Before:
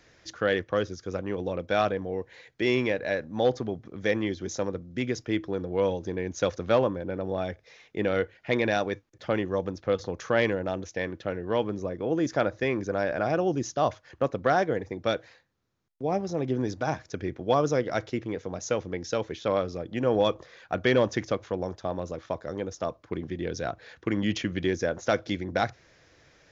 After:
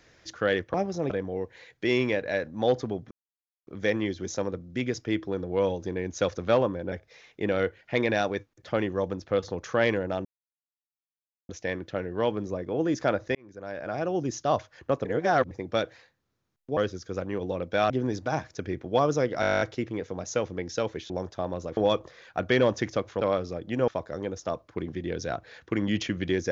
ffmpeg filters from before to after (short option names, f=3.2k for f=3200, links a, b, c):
-filter_complex "[0:a]asplit=25[a][b][c][d][e][f][g][h][i][j][k][l][m][n][o][p][q][r][s][t][u][v][w][x][y];[a]atrim=end=0.742[z];[b]atrim=start=16.088:end=16.452[aa];[c]atrim=start=1.868:end=3.88,asetpts=PTS-STARTPTS,afade=t=out:st=2.008:d=0.004:c=hsin,apad=pad_dur=0.56[ab];[d]atrim=start=3.88:end=7.132,asetpts=PTS-STARTPTS,afade=t=in:d=0.004:c=hsin[ac];[e]atrim=start=7.478:end=10.81,asetpts=PTS-STARTPTS,afade=t=out:st=3.328:d=0.004:c=hsin,apad=pad_dur=1.24[ad];[f]atrim=start=10.81:end=12.67,asetpts=PTS-STARTPTS,afade=t=in:d=0.004:c=hsin,afade=t=out:st=1.856:d=0.004:c=hsin[ae];[g]atrim=start=12.67:end=14.372,asetpts=PTS-STARTPTS,afade=t=in:d=1.04[af];[h]atrim=start=14.368:end=14.832,asetpts=PTS-STARTPTS,areverse[ag];[i]atrim=start=14.828:end=16.092[ah];[j]atrim=start=0.738:end=1.872[ai];[k]atrim=start=16.448:end=17.982[aj];[l]atrim=start=17.958:end=17.982[ak];[m]atrim=start=17.958:end=17.982[al];[n]atrim=start=17.958:end=17.982[am];[o]atrim=start=17.958:end=17.982[an];[p]atrim=start=17.958:end=17.982[ao];[q]atrim=start=17.958:end=17.982[ap];[r]atrim=start=17.958:end=17.982[aq];[s]atrim=start=17.958:end=17.982[ar];[t]atrim=start=17.958:end=17.982[as];[u]atrim=start=17.958:end=19.452[at];[v]atrim=start=21.558:end=22.232[au];[w]atrim=start=20.118:end=21.562[av];[x]atrim=start=19.448:end=20.122[aw];[y]atrim=start=22.228[ax];[z][aa]acrossfade=d=0.004:c1=hsin:c2=hsin[ay];[ab][ac]concat=n=2:v=0:a=1[az];[ay][az]acrossfade=d=0.004:c1=hsin:c2=hsin[ba];[ad][ae][af]concat=n=3:v=0:a=1[bb];[ba][bb]acrossfade=d=0.004:c1=hsin:c2=hsin[bc];[bc][ag]acrossfade=d=0.004:c1=hsin:c2=hsin[bd];[bd][ah]acrossfade=d=0.004:c1=hsin:c2=hsin[be];[be][ai]acrossfade=d=0.004:c1=hsin:c2=hsin[bf];[bf][aj]acrossfade=d=0.004:c1=hsin:c2=hsin[bg];[bg][ak]acrossfade=d=0.004:c1=hsin:c2=hsin[bh];[bh][al]acrossfade=d=0.004:c1=hsin:c2=hsin[bi];[bi][am]acrossfade=d=0.004:c1=hsin:c2=hsin[bj];[bj][an]acrossfade=d=0.004:c1=hsin:c2=hsin[bk];[bk][ao]acrossfade=d=0.004:c1=hsin:c2=hsin[bl];[bl][ap]acrossfade=d=0.004:c1=hsin:c2=hsin[bm];[bm][aq]acrossfade=d=0.004:c1=hsin:c2=hsin[bn];[bn][ar]acrossfade=d=0.004:c1=hsin:c2=hsin[bo];[bo][as]acrossfade=d=0.004:c1=hsin:c2=hsin[bp];[bp][at]acrossfade=d=0.004:c1=hsin:c2=hsin[bq];[bq][au]acrossfade=d=0.004:c1=hsin:c2=hsin[br];[br][av]acrossfade=d=0.004:c1=hsin:c2=hsin[bs];[bs][aw]acrossfade=d=0.004:c1=hsin:c2=hsin[bt];[bt][ax]acrossfade=d=0.004:c1=hsin:c2=hsin"